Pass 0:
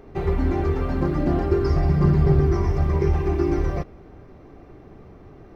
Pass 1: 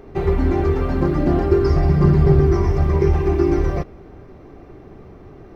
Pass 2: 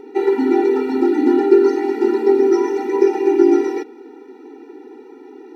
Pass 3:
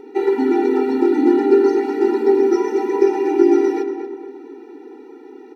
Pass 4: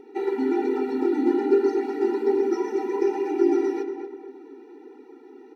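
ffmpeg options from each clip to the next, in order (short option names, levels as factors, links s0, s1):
-af "equalizer=f=380:w=5.1:g=2.5,volume=1.5"
-af "afftfilt=real='re*eq(mod(floor(b*sr/1024/250),2),1)':imag='im*eq(mod(floor(b*sr/1024/250),2),1)':win_size=1024:overlap=0.75,volume=2"
-filter_complex "[0:a]asplit=2[s0][s1];[s1]adelay=231,lowpass=f=2100:p=1,volume=0.473,asplit=2[s2][s3];[s3]adelay=231,lowpass=f=2100:p=1,volume=0.44,asplit=2[s4][s5];[s5]adelay=231,lowpass=f=2100:p=1,volume=0.44,asplit=2[s6][s7];[s7]adelay=231,lowpass=f=2100:p=1,volume=0.44,asplit=2[s8][s9];[s9]adelay=231,lowpass=f=2100:p=1,volume=0.44[s10];[s0][s2][s4][s6][s8][s10]amix=inputs=6:normalize=0,volume=0.891"
-af "flanger=delay=0.3:depth=8.3:regen=-42:speed=1.2:shape=triangular,volume=0.668"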